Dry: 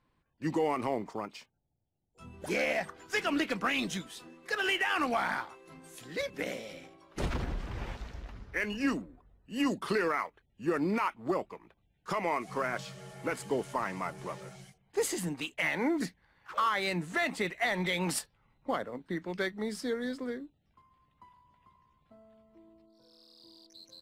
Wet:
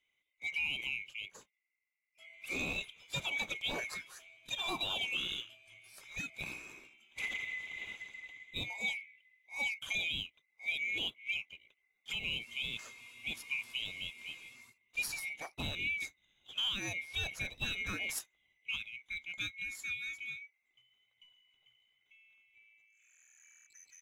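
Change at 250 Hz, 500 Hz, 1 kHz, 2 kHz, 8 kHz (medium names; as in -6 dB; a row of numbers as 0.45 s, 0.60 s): -17.5 dB, -19.0 dB, -16.5 dB, -2.0 dB, -4.0 dB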